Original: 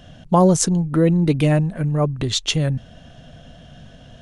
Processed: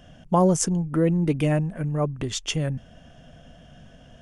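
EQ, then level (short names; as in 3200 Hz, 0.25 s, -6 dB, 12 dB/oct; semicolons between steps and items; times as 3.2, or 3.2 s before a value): bell 110 Hz -4.5 dB 0.64 oct; bell 4000 Hz -14.5 dB 0.23 oct; -4.5 dB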